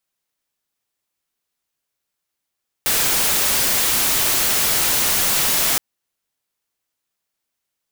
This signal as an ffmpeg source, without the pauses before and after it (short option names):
-f lavfi -i "anoisesrc=c=white:a=0.218:d=2.92:r=44100:seed=1"